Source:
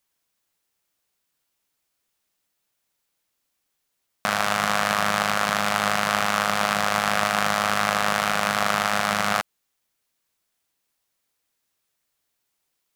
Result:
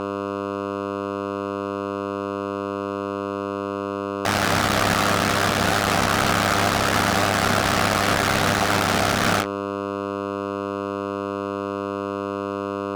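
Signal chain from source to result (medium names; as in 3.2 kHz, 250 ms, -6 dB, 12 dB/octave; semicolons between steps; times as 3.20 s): CVSD coder 32 kbps; ring modulator 33 Hz; flange 0.69 Hz, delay 9.4 ms, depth 9.8 ms, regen +31%; mains buzz 100 Hz, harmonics 7, -39 dBFS -5 dB/octave; fuzz box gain 39 dB, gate -36 dBFS; bass shelf 160 Hz -3 dB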